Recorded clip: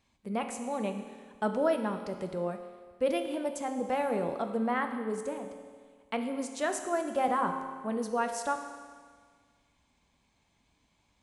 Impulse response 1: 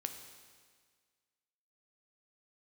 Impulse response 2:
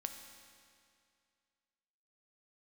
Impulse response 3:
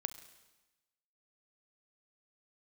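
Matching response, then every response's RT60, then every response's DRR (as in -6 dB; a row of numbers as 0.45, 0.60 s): 1; 1.7, 2.3, 1.1 s; 5.5, 5.0, 10.5 dB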